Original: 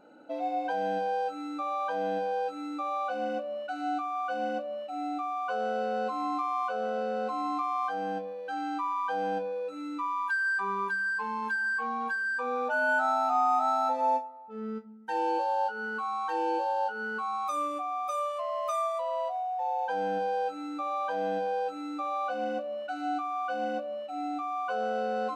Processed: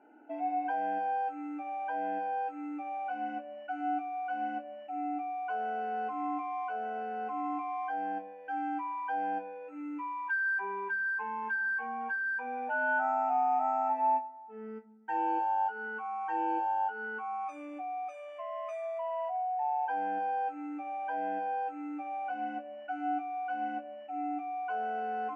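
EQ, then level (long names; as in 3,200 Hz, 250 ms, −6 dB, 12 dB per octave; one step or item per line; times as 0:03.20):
band-pass filter 230–3,000 Hz
phaser with its sweep stopped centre 800 Hz, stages 8
0.0 dB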